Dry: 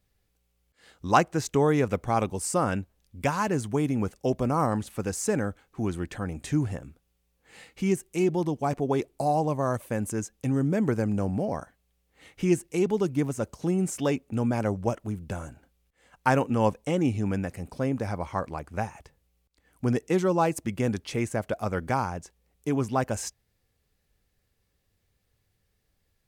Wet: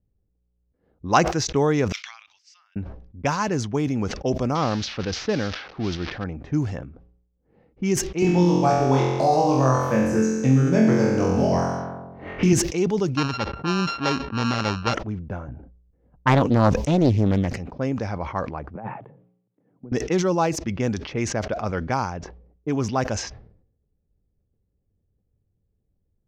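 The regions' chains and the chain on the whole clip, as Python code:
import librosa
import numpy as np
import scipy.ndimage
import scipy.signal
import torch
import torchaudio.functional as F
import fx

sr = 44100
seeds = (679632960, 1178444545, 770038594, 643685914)

y = fx.chain(x, sr, fx.peak_eq(hz=9000.0, db=-9.5, octaves=0.35),
    fx.over_compress(threshold_db=-27.0, ratio=-0.5),
    fx.cheby2_highpass(hz=480.0, order=4, stop_db=80), at=(1.92, 2.76))
y = fx.chain(y, sr, fx.crossing_spikes(level_db=-19.5),
    fx.lowpass(hz=4800.0, slope=24),
    fx.peak_eq(hz=990.0, db=-3.0, octaves=0.3), at=(4.55, 6.24))
y = fx.chain(y, sr, fx.room_flutter(wall_m=3.9, rt60_s=1.0),
    fx.band_squash(depth_pct=70), at=(8.22, 12.53))
y = fx.chain(y, sr, fx.sample_sort(block=32),
    fx.lowpass(hz=4700.0, slope=12), at=(13.17, 14.94))
y = fx.chain(y, sr, fx.low_shelf(hz=270.0, db=9.5),
    fx.doppler_dist(depth_ms=0.67), at=(15.48, 17.57))
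y = fx.chain(y, sr, fx.cheby1_bandpass(low_hz=120.0, high_hz=3500.0, order=5),
    fx.over_compress(threshold_db=-37.0, ratio=-1.0), at=(18.75, 19.92))
y = fx.env_lowpass(y, sr, base_hz=370.0, full_db=-22.0)
y = fx.high_shelf_res(y, sr, hz=7300.0, db=-9.0, q=3.0)
y = fx.sustainer(y, sr, db_per_s=78.0)
y = F.gain(torch.from_numpy(y), 2.0).numpy()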